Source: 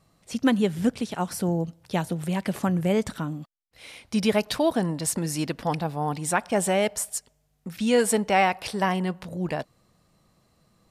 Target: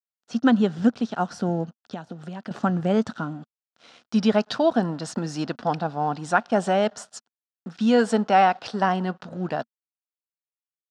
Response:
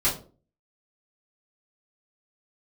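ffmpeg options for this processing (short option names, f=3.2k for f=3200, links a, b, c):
-filter_complex "[0:a]aeval=exprs='sgn(val(0))*max(abs(val(0))-0.00398,0)':c=same,asettb=1/sr,asplit=3[a][b][c];[a]atrim=end=1.644[d];[b]atrim=start=1.64:end=2.51,asetpts=PTS-STARTPTS,afade=t=in:d=0.004:c=qsin,afade=t=out:st=0.866:d=0.004:c=qsin,acompressor=threshold=-33dB:ratio=12[e];[c]atrim=start=2.506[f];[d][e]acrossfade=d=0.004:c1=hsin:c2=qsin[g];[g][f]acrossfade=d=0.004:c1=qsin:c2=hsin,highpass=130,equalizer=f=230:t=q:w=4:g=6,equalizer=f=720:t=q:w=4:g=6,equalizer=f=1.4k:t=q:w=4:g=9,equalizer=f=2.2k:t=q:w=4:g=-9,lowpass=f=6k:w=0.5412,lowpass=f=6k:w=1.3066"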